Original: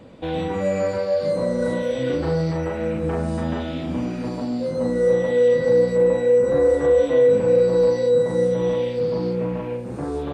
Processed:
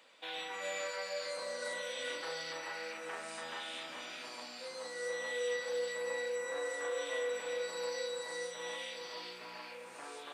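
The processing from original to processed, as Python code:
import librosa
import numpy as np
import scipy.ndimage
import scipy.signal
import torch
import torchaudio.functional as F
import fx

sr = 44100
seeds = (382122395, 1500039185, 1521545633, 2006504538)

y = scipy.signal.sosfilt(scipy.signal.bessel(2, 2000.0, 'highpass', norm='mag', fs=sr, output='sos'), x)
y = y + 10.0 ** (-6.0 / 20.0) * np.pad(y, (int(398 * sr / 1000.0), 0))[:len(y)]
y = F.gain(torch.from_numpy(y), -1.5).numpy()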